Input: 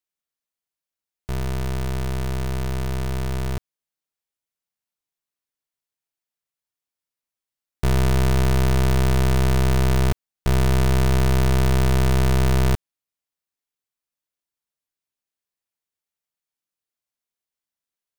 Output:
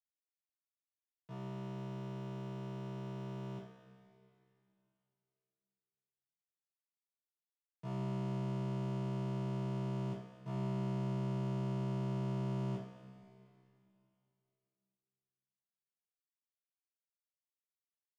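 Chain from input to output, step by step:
elliptic band-pass filter 160–3,700 Hz, stop band 40 dB
leveller curve on the samples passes 3
noise gate −14 dBFS, range −32 dB
notch filter 800 Hz, Q 12
coupled-rooms reverb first 0.43 s, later 2.8 s, from −15 dB, DRR −9 dB
level −1 dB

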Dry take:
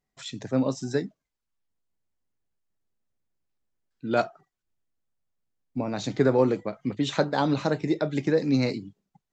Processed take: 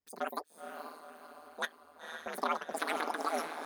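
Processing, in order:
feedback delay with all-pass diffusion 1,285 ms, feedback 51%, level −6 dB
ring modulation 31 Hz
change of speed 2.55×
level −8 dB

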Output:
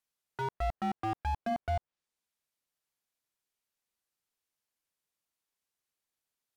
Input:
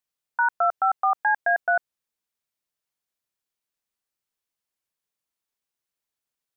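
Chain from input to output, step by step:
treble cut that deepens with the level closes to 1,100 Hz, closed at −19.5 dBFS
slew-rate limiting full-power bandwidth 24 Hz
level −1 dB

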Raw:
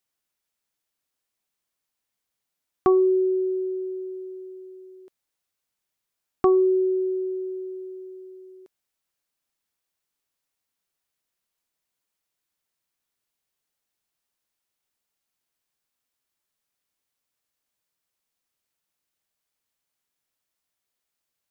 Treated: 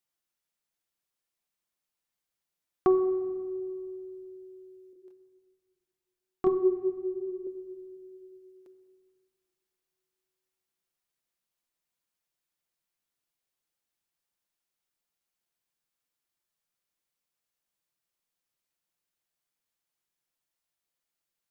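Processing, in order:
0:04.93–0:07.47: multi-voice chorus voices 6, 1.2 Hz, delay 27 ms, depth 3.6 ms
rectangular room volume 3,900 cubic metres, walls mixed, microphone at 0.85 metres
level −5 dB

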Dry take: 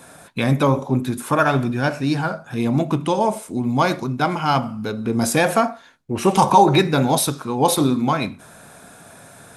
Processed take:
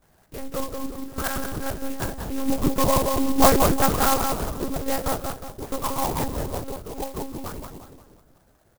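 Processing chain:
source passing by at 0:03.67, 7 m/s, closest 3.9 metres
low-pass filter 2,400 Hz 12 dB per octave
notch filter 750 Hz, Q 12
harmonic and percussive parts rebalanced harmonic −5 dB
phase-vocoder pitch shift with formants kept −4 semitones
pitch vibrato 1 Hz 99 cents
double-tracking delay 29 ms −12 dB
feedback echo with a low-pass in the loop 195 ms, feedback 51%, low-pass 1,500 Hz, level −3.5 dB
wrong playback speed 44.1 kHz file played as 48 kHz
one-pitch LPC vocoder at 8 kHz 270 Hz
converter with an unsteady clock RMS 0.093 ms
level +5.5 dB

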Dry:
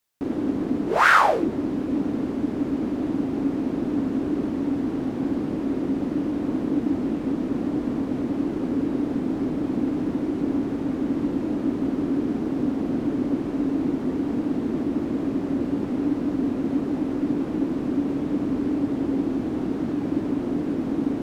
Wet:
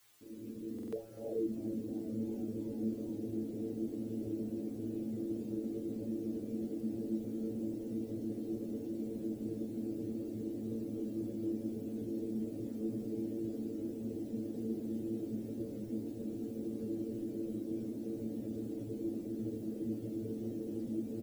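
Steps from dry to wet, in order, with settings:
fade in at the beginning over 1.49 s
reverb reduction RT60 0.77 s
elliptic low-pass filter 510 Hz, stop band 50 dB
mains-hum notches 50/100/150/200/250 Hz
brickwall limiter −23.5 dBFS, peak gain reduction 9 dB
bit-depth reduction 10 bits, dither triangular
stiff-string resonator 110 Hz, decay 0.3 s, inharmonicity 0.002
echo with shifted repeats 342 ms, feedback 57%, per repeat +98 Hz, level −19.5 dB
buffer that repeats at 0:00.74, samples 2,048, times 3
level +3.5 dB

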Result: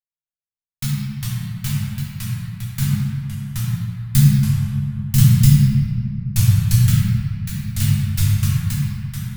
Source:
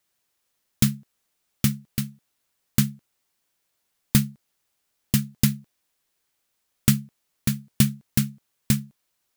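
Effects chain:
adaptive Wiener filter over 41 samples
noise gate with hold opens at −51 dBFS
Chebyshev band-stop filter 200–830 Hz, order 4
0:02.82–0:05.50: bass and treble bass +11 dB, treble +6 dB
convolution reverb RT60 2.2 s, pre-delay 7 ms, DRR −7.5 dB
delay with pitch and tempo change per echo 248 ms, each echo −3 semitones, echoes 2
level −6.5 dB

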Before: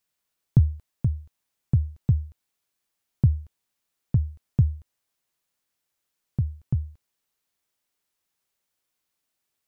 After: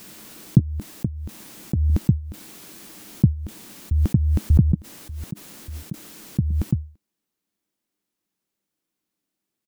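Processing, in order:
0:00.59–0:01.90: downward compressor 4 to 1, threshold −25 dBFS, peak gain reduction 8.5 dB
0:03.32–0:04.15: delay throw 590 ms, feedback 30%, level −2 dB
hollow resonant body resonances 210/300 Hz, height 15 dB, ringing for 45 ms
background raised ahead of every attack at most 22 dB per second
level −3.5 dB

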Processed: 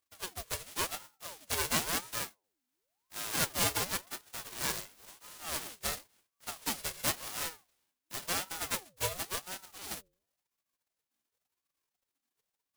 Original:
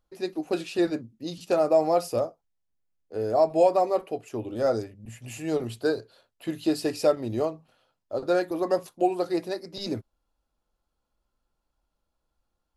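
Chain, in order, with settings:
spectral envelope flattened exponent 0.1
hum removal 95.82 Hz, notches 3
ring modulator whose carrier an LFO sweeps 700 Hz, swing 65%, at 0.94 Hz
level −8 dB

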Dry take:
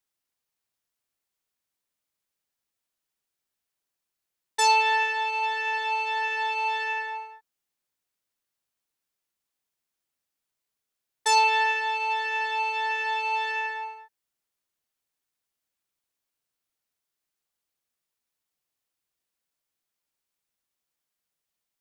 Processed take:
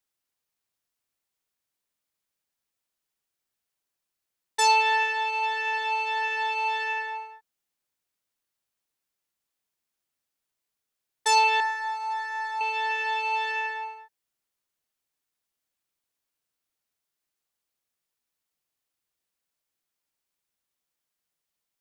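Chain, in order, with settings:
0:11.60–0:12.61: phaser with its sweep stopped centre 1,200 Hz, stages 4

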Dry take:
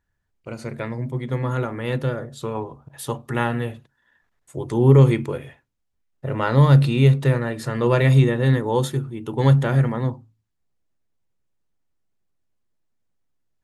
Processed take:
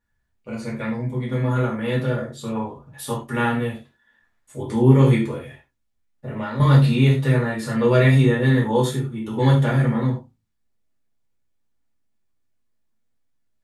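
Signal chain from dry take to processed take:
0:05.31–0:06.60: downward compressor 4 to 1, threshold −28 dBFS, peak gain reduction 13.5 dB
reverb whose tail is shaped and stops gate 130 ms falling, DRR −6.5 dB
level −6 dB

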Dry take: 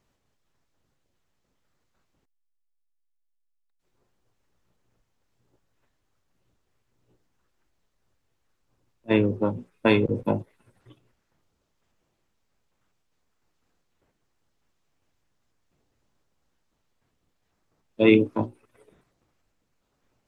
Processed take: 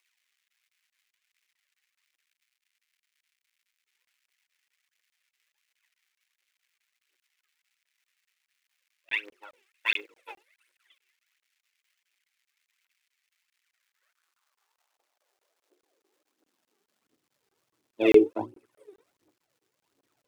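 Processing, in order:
phase shifter 1.4 Hz, delay 2.7 ms, feedback 78%
low shelf with overshoot 230 Hz −12.5 dB, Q 3
surface crackle 390 per second −55 dBFS
high-pass filter sweep 2,100 Hz → 120 Hz, 0:13.62–0:17.44
regular buffer underruns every 0.21 s, samples 1,024, zero, from 0:00.48
level −7.5 dB

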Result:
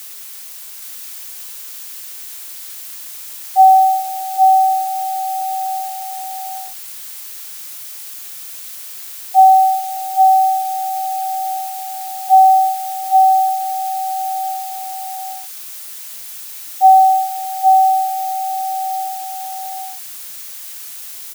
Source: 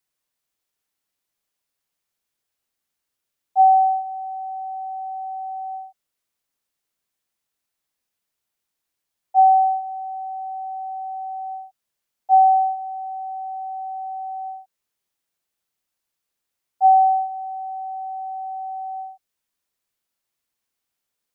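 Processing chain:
background noise blue −39 dBFS
single-tap delay 820 ms −3.5 dB
level +5.5 dB

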